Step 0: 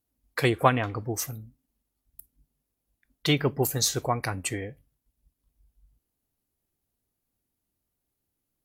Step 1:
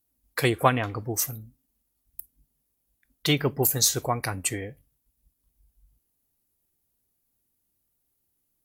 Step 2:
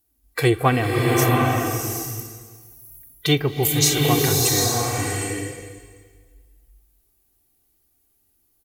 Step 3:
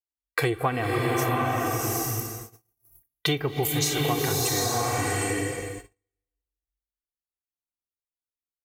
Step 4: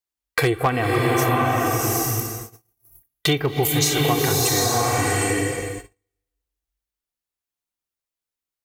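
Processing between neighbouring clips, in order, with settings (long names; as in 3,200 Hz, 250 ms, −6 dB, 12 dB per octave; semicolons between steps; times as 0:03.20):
high-shelf EQ 7,400 Hz +9.5 dB
harmonic and percussive parts rebalanced harmonic +9 dB; comb filter 2.6 ms, depth 46%; slow-attack reverb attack 780 ms, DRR −1.5 dB; level −1 dB
noise gate −41 dBFS, range −39 dB; parametric band 1,000 Hz +5.5 dB 2.3 octaves; downward compressor 5 to 1, threshold −25 dBFS, peak gain reduction 15 dB; level +2 dB
wave folding −15 dBFS; level +5.5 dB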